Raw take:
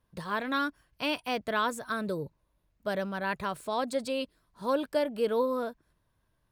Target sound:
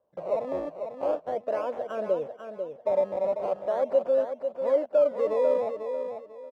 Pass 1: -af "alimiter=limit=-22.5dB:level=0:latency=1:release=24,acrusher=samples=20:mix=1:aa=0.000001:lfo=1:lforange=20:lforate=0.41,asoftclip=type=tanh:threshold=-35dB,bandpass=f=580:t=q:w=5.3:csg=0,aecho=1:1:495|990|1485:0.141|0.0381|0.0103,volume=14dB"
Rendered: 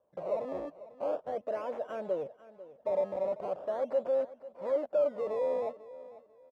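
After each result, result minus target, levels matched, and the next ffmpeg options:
soft clip: distortion +13 dB; echo-to-direct -9.5 dB
-af "alimiter=limit=-22.5dB:level=0:latency=1:release=24,acrusher=samples=20:mix=1:aa=0.000001:lfo=1:lforange=20:lforate=0.41,asoftclip=type=tanh:threshold=-23.5dB,bandpass=f=580:t=q:w=5.3:csg=0,aecho=1:1:495|990|1485:0.141|0.0381|0.0103,volume=14dB"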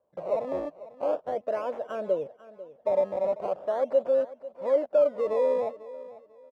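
echo-to-direct -9.5 dB
-af "alimiter=limit=-22.5dB:level=0:latency=1:release=24,acrusher=samples=20:mix=1:aa=0.000001:lfo=1:lforange=20:lforate=0.41,asoftclip=type=tanh:threshold=-23.5dB,bandpass=f=580:t=q:w=5.3:csg=0,aecho=1:1:495|990|1485:0.422|0.114|0.0307,volume=14dB"

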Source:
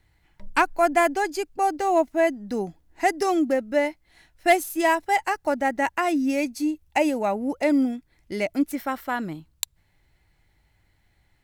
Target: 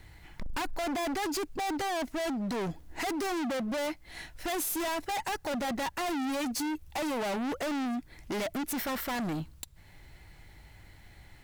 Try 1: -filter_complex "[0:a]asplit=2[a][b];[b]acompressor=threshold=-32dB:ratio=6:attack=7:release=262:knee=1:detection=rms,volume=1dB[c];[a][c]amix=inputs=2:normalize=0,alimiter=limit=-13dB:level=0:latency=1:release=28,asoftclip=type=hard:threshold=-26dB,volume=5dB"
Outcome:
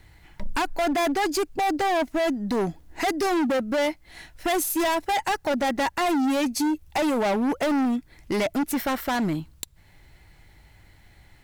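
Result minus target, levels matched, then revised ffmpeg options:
hard clip: distortion -4 dB
-filter_complex "[0:a]asplit=2[a][b];[b]acompressor=threshold=-32dB:ratio=6:attack=7:release=262:knee=1:detection=rms,volume=1dB[c];[a][c]amix=inputs=2:normalize=0,alimiter=limit=-13dB:level=0:latency=1:release=28,asoftclip=type=hard:threshold=-36dB,volume=5dB"

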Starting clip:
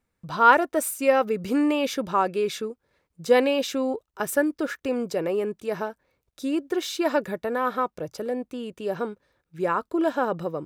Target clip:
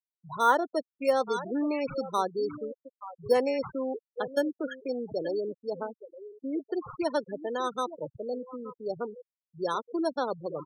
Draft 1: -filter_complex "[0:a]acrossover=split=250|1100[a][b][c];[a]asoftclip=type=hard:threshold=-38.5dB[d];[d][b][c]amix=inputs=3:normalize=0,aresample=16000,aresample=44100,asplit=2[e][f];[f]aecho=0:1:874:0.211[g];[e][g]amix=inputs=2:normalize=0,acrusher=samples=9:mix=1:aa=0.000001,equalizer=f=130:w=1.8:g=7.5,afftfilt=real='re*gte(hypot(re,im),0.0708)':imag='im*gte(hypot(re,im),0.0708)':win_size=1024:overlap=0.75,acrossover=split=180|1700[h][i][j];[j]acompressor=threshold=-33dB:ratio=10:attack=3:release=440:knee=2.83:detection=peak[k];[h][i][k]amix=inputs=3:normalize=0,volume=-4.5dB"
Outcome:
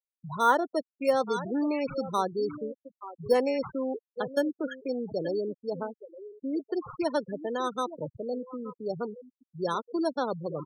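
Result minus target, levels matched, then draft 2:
hard clip: distortion -4 dB
-filter_complex "[0:a]acrossover=split=250|1100[a][b][c];[a]asoftclip=type=hard:threshold=-48.5dB[d];[d][b][c]amix=inputs=3:normalize=0,aresample=16000,aresample=44100,asplit=2[e][f];[f]aecho=0:1:874:0.211[g];[e][g]amix=inputs=2:normalize=0,acrusher=samples=9:mix=1:aa=0.000001,equalizer=f=130:w=1.8:g=7.5,afftfilt=real='re*gte(hypot(re,im),0.0708)':imag='im*gte(hypot(re,im),0.0708)':win_size=1024:overlap=0.75,acrossover=split=180|1700[h][i][j];[j]acompressor=threshold=-33dB:ratio=10:attack=3:release=440:knee=2.83:detection=peak[k];[h][i][k]amix=inputs=3:normalize=0,volume=-4.5dB"

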